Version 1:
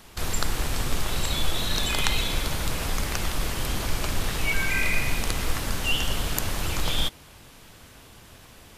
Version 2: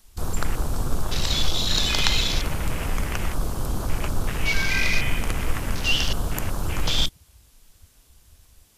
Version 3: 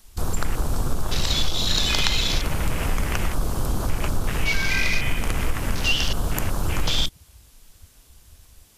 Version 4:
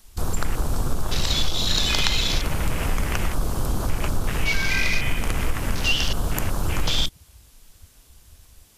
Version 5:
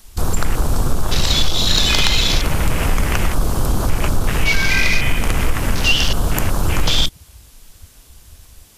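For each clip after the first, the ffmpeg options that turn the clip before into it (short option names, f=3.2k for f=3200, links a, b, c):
-af "afwtdn=0.0224,bass=f=250:g=2,treble=f=4k:g=12,volume=1dB"
-af "acompressor=threshold=-21dB:ratio=2.5,volume=3.5dB"
-af anull
-af "asoftclip=type=tanh:threshold=-8dB,volume=7dB"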